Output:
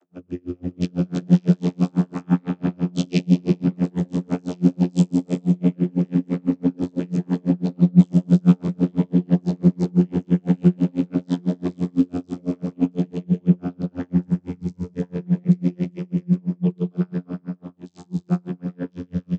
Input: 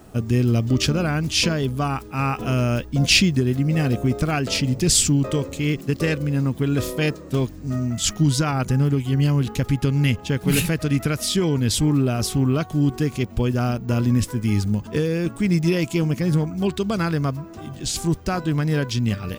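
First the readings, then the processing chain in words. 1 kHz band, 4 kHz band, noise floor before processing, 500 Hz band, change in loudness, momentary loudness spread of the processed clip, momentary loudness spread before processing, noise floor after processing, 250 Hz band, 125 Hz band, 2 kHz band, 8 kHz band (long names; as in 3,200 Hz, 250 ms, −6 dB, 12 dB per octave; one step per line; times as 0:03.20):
−9.5 dB, below −15 dB, −39 dBFS, −5.0 dB, −1.0 dB, 12 LU, 5 LU, −56 dBFS, +2.5 dB, −1.5 dB, below −15 dB, below −20 dB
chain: parametric band 130 Hz +9 dB 1.4 octaves
reverb whose tail is shaped and stops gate 480 ms flat, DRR 4 dB
delay with pitch and tempo change per echo 498 ms, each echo +4 semitones, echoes 3
channel vocoder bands 32, saw 88.8 Hz
tremolo with a sine in dB 6 Hz, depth 36 dB
level −2 dB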